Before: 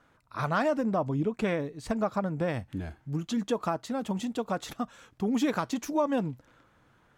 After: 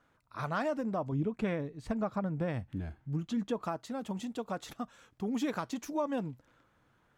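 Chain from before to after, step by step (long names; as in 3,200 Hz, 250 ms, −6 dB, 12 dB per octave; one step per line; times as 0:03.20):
0:01.12–0:03.64: bass and treble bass +5 dB, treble −5 dB
level −6 dB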